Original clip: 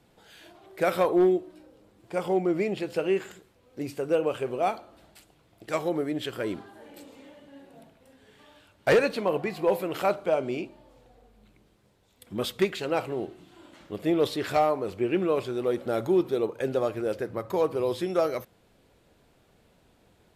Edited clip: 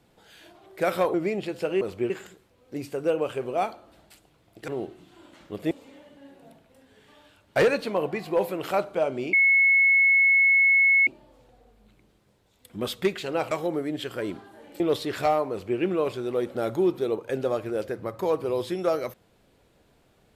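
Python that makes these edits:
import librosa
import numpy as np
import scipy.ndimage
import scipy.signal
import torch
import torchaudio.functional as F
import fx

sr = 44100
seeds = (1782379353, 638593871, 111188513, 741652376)

y = fx.edit(x, sr, fx.cut(start_s=1.14, length_s=1.34),
    fx.swap(start_s=5.73, length_s=1.29, other_s=13.08, other_length_s=1.03),
    fx.insert_tone(at_s=10.64, length_s=1.74, hz=2190.0, db=-15.5),
    fx.duplicate(start_s=14.81, length_s=0.29, to_s=3.15), tone=tone)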